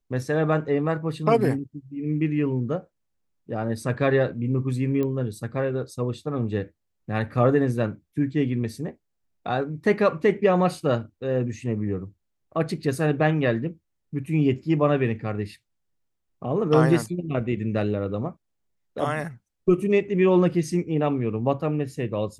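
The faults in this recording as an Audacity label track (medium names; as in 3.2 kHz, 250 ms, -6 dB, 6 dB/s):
5.030000	5.030000	pop -17 dBFS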